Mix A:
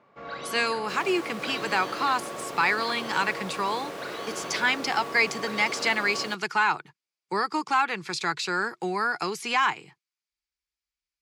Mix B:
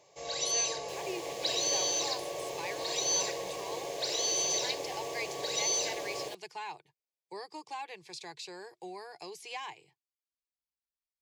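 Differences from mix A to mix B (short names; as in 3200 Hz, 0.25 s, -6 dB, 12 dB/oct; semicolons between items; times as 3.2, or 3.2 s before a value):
speech -11.0 dB; first sound: remove air absorption 400 m; master: add fixed phaser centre 560 Hz, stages 4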